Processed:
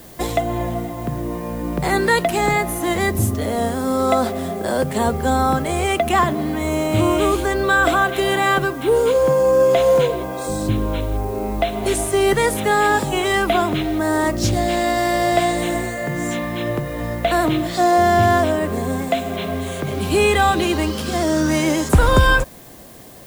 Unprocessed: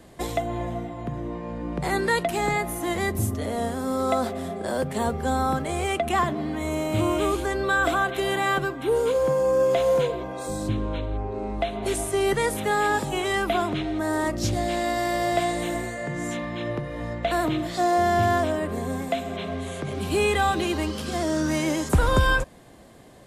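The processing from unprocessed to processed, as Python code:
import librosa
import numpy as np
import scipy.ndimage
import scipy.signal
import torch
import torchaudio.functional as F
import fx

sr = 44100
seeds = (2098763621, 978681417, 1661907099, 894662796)

y = fx.dmg_noise_colour(x, sr, seeds[0], colour='blue', level_db=-52.0)
y = F.gain(torch.from_numpy(y), 6.5).numpy()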